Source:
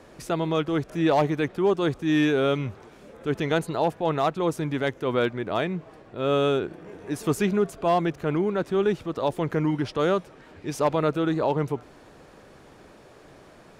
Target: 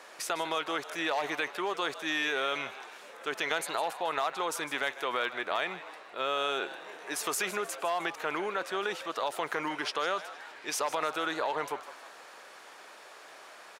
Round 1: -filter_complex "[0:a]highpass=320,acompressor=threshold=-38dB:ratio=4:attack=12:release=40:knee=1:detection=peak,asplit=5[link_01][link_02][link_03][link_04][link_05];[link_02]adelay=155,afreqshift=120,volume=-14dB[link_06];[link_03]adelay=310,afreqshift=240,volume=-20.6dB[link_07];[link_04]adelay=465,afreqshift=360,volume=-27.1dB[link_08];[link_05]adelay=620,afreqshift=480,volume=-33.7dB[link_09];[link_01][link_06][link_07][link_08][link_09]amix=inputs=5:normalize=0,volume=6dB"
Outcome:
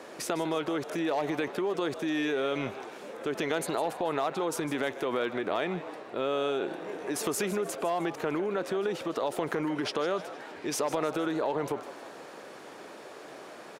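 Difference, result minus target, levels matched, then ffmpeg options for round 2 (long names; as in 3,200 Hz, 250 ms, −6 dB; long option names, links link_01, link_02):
250 Hz band +8.5 dB
-filter_complex "[0:a]highpass=920,acompressor=threshold=-38dB:ratio=4:attack=12:release=40:knee=1:detection=peak,asplit=5[link_01][link_02][link_03][link_04][link_05];[link_02]adelay=155,afreqshift=120,volume=-14dB[link_06];[link_03]adelay=310,afreqshift=240,volume=-20.6dB[link_07];[link_04]adelay=465,afreqshift=360,volume=-27.1dB[link_08];[link_05]adelay=620,afreqshift=480,volume=-33.7dB[link_09];[link_01][link_06][link_07][link_08][link_09]amix=inputs=5:normalize=0,volume=6dB"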